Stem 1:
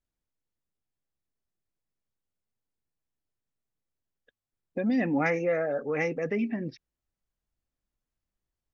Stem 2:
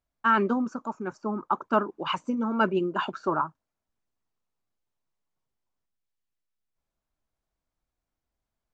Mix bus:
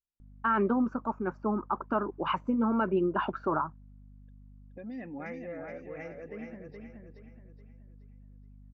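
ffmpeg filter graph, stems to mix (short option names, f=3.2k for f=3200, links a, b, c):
-filter_complex "[0:a]lowpass=f=3.4k:p=1,volume=-14.5dB,asplit=3[a][b][c];[b]volume=-5dB[d];[1:a]lowpass=1.9k,alimiter=limit=-20dB:level=0:latency=1:release=84,aeval=exprs='val(0)+0.00251*(sin(2*PI*50*n/s)+sin(2*PI*2*50*n/s)/2+sin(2*PI*3*50*n/s)/3+sin(2*PI*4*50*n/s)/4+sin(2*PI*5*50*n/s)/5)':c=same,adelay=200,volume=1dB[e];[c]apad=whole_len=393943[f];[e][f]sidechaincompress=threshold=-46dB:ratio=8:attack=16:release=390[g];[d]aecho=0:1:423|846|1269|1692|2115:1|0.38|0.144|0.0549|0.0209[h];[a][g][h]amix=inputs=3:normalize=0"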